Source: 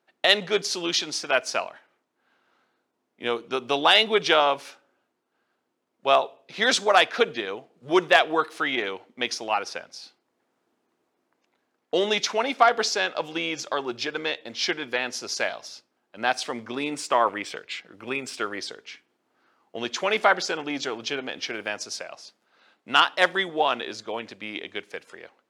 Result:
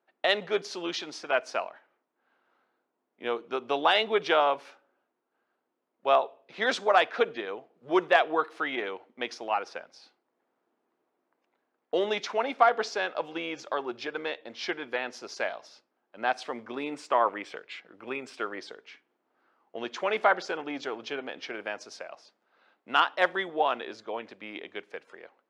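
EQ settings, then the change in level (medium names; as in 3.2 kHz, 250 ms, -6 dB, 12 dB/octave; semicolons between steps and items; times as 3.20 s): high-pass 420 Hz 6 dB/octave; low-pass 1.2 kHz 6 dB/octave; 0.0 dB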